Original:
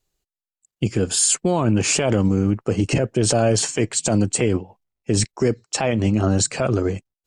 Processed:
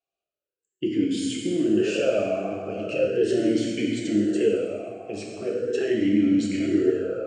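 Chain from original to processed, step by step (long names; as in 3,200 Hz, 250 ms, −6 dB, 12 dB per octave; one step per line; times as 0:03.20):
parametric band 1,000 Hz −9 dB 0.77 octaves
dense smooth reverb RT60 3.1 s, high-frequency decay 0.5×, DRR −3.5 dB
formant filter swept between two vowels a-i 0.39 Hz
level +4 dB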